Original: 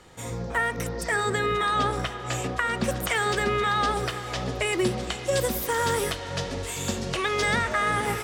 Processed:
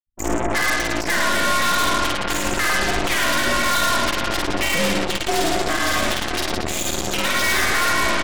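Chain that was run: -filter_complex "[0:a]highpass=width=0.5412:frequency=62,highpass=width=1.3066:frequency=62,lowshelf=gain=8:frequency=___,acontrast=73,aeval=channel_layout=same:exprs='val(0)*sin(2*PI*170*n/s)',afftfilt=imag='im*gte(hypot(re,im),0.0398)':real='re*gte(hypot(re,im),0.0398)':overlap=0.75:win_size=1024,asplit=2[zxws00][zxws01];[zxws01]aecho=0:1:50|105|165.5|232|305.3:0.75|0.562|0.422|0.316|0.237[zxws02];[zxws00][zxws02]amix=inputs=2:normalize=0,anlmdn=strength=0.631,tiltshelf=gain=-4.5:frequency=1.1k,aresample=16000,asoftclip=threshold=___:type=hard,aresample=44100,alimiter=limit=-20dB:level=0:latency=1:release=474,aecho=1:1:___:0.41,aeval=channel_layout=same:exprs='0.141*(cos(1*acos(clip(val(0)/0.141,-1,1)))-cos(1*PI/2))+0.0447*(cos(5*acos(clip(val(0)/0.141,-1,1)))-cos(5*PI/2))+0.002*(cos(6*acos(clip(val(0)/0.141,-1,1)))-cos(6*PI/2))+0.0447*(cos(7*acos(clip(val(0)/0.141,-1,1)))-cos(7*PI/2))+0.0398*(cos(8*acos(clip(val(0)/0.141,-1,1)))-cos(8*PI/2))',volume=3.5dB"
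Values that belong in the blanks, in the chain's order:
120, -13.5dB, 5.8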